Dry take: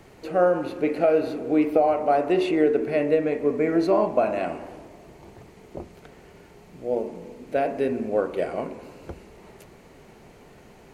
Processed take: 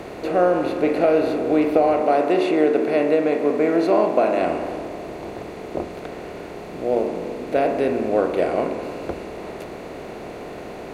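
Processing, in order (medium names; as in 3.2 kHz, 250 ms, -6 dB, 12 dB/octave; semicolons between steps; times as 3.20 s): spectral levelling over time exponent 0.6; 2.01–4.39 s: high-pass 170 Hz 12 dB/octave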